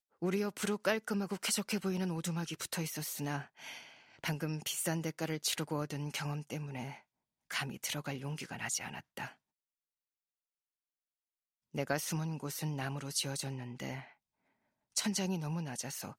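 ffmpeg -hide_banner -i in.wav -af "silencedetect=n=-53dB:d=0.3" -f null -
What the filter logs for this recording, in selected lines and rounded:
silence_start: 6.99
silence_end: 7.50 | silence_duration: 0.51
silence_start: 9.33
silence_end: 11.74 | silence_duration: 2.41
silence_start: 14.12
silence_end: 14.95 | silence_duration: 0.84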